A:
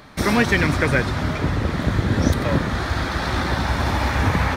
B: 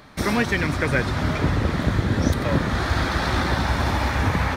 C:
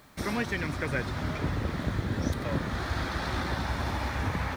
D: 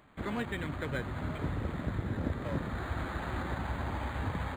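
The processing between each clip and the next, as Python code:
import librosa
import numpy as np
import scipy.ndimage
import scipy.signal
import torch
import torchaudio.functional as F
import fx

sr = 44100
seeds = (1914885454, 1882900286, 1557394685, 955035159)

y1 = fx.rider(x, sr, range_db=10, speed_s=0.5)
y1 = y1 * 10.0 ** (-1.5 / 20.0)
y2 = fx.dmg_noise_colour(y1, sr, seeds[0], colour='white', level_db=-56.0)
y2 = y2 * 10.0 ** (-9.0 / 20.0)
y3 = np.interp(np.arange(len(y2)), np.arange(len(y2))[::8], y2[::8])
y3 = y3 * 10.0 ** (-4.0 / 20.0)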